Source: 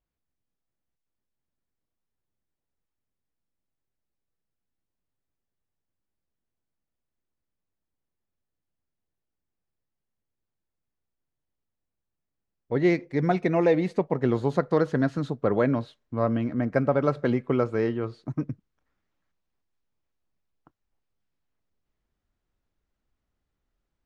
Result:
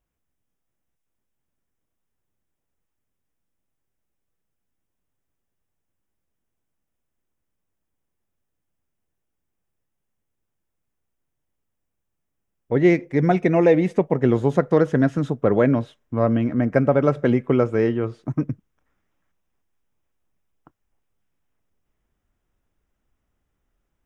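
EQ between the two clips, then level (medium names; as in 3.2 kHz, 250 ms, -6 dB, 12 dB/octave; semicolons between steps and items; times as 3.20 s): dynamic bell 1.1 kHz, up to -4 dB, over -39 dBFS, Q 1.4; peaking EQ 4.3 kHz -15 dB 0.26 oct; +6.0 dB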